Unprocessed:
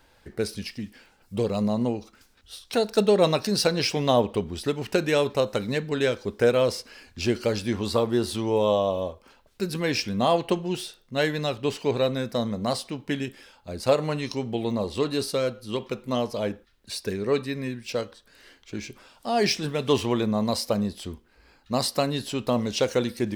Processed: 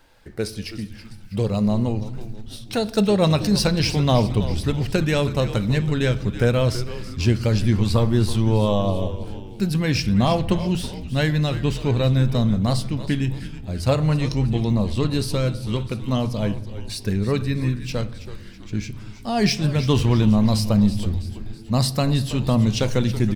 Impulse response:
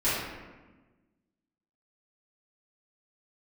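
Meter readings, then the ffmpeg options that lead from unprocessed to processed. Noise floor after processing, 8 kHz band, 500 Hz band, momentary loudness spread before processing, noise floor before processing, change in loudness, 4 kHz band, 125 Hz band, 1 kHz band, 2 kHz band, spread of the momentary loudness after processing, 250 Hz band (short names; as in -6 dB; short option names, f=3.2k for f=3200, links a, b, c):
-39 dBFS, +2.0 dB, -1.0 dB, 13 LU, -60 dBFS, +4.5 dB, +2.0 dB, +13.0 dB, +0.5 dB, +2.0 dB, 13 LU, +6.5 dB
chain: -filter_complex "[0:a]asubboost=boost=5.5:cutoff=170,asplit=6[a][b][c][d][e][f];[b]adelay=326,afreqshift=-110,volume=-13dB[g];[c]adelay=652,afreqshift=-220,volume=-18.8dB[h];[d]adelay=978,afreqshift=-330,volume=-24.7dB[i];[e]adelay=1304,afreqshift=-440,volume=-30.5dB[j];[f]adelay=1630,afreqshift=-550,volume=-36.4dB[k];[a][g][h][i][j][k]amix=inputs=6:normalize=0,asplit=2[l][m];[1:a]atrim=start_sample=2205,lowshelf=f=210:g=11.5[n];[m][n]afir=irnorm=-1:irlink=0,volume=-29.5dB[o];[l][o]amix=inputs=2:normalize=0,volume=1.5dB"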